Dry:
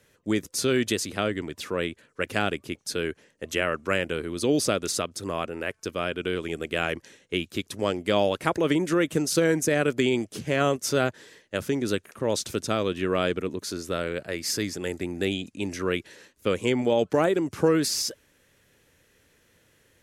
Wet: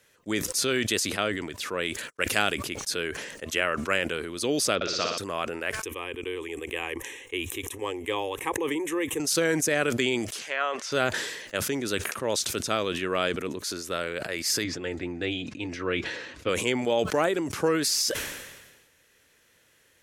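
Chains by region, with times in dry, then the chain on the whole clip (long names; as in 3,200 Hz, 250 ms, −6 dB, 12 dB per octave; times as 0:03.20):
0:01.85–0:02.55: noise gate −60 dBFS, range −52 dB + high-shelf EQ 4,500 Hz +8 dB
0:04.75–0:05.18: Butterworth low-pass 5,500 Hz + flutter between parallel walls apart 10.4 metres, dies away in 1.2 s
0:05.83–0:09.20: dynamic equaliser 2,600 Hz, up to −4 dB, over −39 dBFS, Q 1.2 + phaser with its sweep stopped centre 950 Hz, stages 8
0:10.31–0:10.92: treble cut that deepens with the level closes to 2,500 Hz, closed at −21.5 dBFS + high-pass filter 760 Hz
0:14.64–0:16.49: low-pass filter 3,700 Hz + low-shelf EQ 350 Hz +5 dB + notch comb filter 200 Hz
whole clip: low-shelf EQ 490 Hz −10 dB; level that may fall only so fast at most 45 dB per second; level +2 dB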